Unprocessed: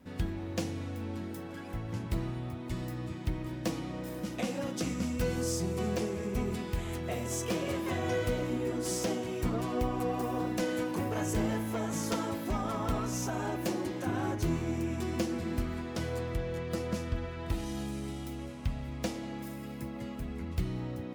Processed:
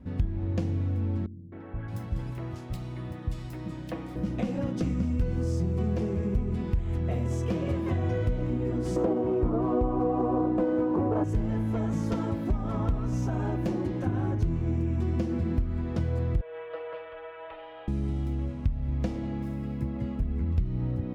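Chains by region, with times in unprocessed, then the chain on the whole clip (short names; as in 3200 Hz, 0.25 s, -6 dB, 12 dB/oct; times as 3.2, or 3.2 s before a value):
1.26–4.16 tilt +3 dB/oct + three bands offset in time lows, mids, highs 0.26/0.62 s, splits 250/2400 Hz
8.96–11.24 median filter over 9 samples + band shelf 600 Hz +11.5 dB 2.6 oct
16.41–17.88 elliptic band-pass 550–3200 Hz + comb 6.1 ms, depth 40% + frequency shift -18 Hz
whole clip: RIAA curve playback; compressor 4:1, threshold -24 dBFS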